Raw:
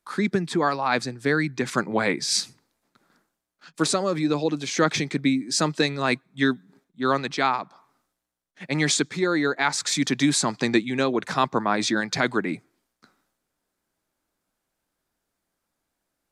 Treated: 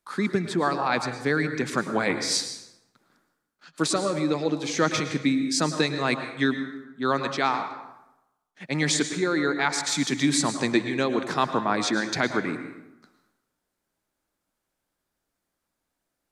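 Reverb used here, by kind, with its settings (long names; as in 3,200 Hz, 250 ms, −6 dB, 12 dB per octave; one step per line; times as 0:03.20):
dense smooth reverb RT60 0.91 s, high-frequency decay 0.65×, pre-delay 95 ms, DRR 8 dB
level −2 dB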